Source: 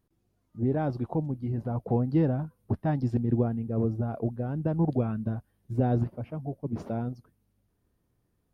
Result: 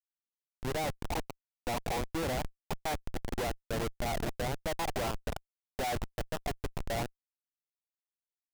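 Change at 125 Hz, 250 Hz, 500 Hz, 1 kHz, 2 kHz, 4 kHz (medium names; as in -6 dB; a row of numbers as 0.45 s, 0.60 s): -13.0 dB, -12.5 dB, -4.0 dB, +2.0 dB, +9.0 dB, no reading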